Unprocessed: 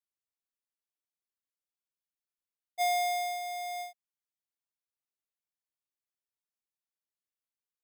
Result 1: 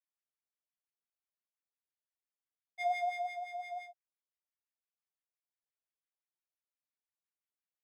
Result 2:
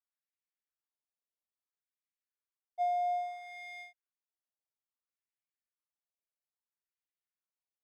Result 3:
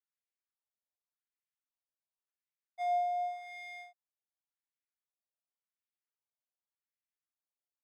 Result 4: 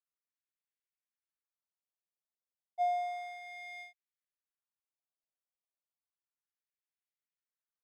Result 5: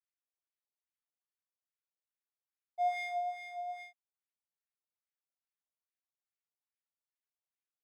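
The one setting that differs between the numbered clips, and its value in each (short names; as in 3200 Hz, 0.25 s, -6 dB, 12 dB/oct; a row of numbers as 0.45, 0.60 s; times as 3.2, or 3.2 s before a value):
wah, rate: 5.8, 0.6, 0.89, 0.32, 2.4 Hz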